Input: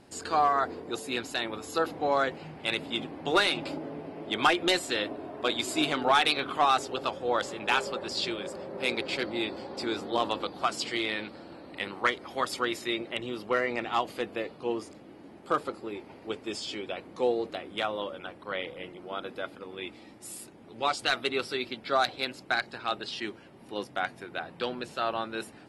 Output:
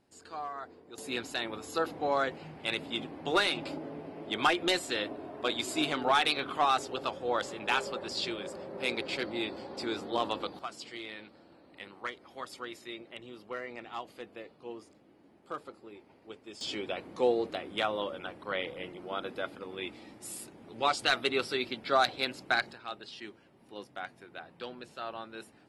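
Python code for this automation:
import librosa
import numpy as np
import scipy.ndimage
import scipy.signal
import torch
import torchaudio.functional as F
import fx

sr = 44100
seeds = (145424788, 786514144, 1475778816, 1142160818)

y = fx.gain(x, sr, db=fx.steps((0.0, -15.0), (0.98, -3.0), (10.59, -12.0), (16.61, 0.0), (22.73, -9.5)))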